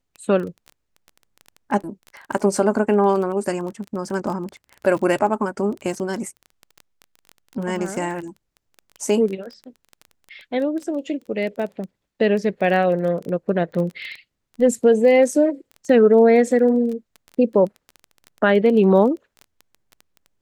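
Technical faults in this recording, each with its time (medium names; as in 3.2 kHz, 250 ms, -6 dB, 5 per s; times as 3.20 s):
crackle 16 per s -28 dBFS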